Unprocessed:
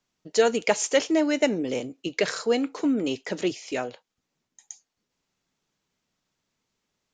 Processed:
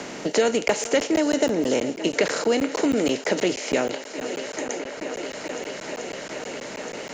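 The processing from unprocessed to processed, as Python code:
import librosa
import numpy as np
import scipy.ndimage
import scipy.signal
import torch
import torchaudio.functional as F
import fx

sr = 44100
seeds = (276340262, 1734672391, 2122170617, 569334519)

y = fx.bin_compress(x, sr, power=0.6)
y = fx.peak_eq(y, sr, hz=2300.0, db=-14.5, octaves=0.28, at=(1.22, 1.74))
y = fx.echo_thinned(y, sr, ms=435, feedback_pct=84, hz=190.0, wet_db=-18.5)
y = fx.buffer_crackle(y, sr, first_s=0.68, period_s=0.16, block=512, kind='zero')
y = fx.band_squash(y, sr, depth_pct=70)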